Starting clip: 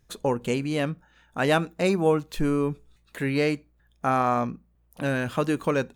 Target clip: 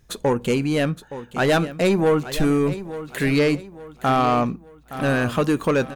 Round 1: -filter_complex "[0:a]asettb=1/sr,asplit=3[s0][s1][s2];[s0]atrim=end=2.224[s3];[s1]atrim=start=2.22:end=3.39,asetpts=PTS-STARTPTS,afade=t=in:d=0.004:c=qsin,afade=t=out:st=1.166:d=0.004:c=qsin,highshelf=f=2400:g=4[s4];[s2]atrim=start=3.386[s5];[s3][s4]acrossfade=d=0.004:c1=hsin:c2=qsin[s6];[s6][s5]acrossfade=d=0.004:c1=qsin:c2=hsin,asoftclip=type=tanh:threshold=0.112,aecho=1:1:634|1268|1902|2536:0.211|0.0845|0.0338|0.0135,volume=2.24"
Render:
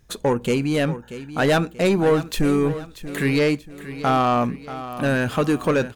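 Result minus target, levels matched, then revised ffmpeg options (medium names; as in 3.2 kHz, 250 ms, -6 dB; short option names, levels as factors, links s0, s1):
echo 234 ms early
-filter_complex "[0:a]asettb=1/sr,asplit=3[s0][s1][s2];[s0]atrim=end=2.224[s3];[s1]atrim=start=2.22:end=3.39,asetpts=PTS-STARTPTS,afade=t=in:d=0.004:c=qsin,afade=t=out:st=1.166:d=0.004:c=qsin,highshelf=f=2400:g=4[s4];[s2]atrim=start=3.386[s5];[s3][s4]acrossfade=d=0.004:c1=hsin:c2=qsin[s6];[s6][s5]acrossfade=d=0.004:c1=qsin:c2=hsin,asoftclip=type=tanh:threshold=0.112,aecho=1:1:868|1736|2604|3472:0.211|0.0845|0.0338|0.0135,volume=2.24"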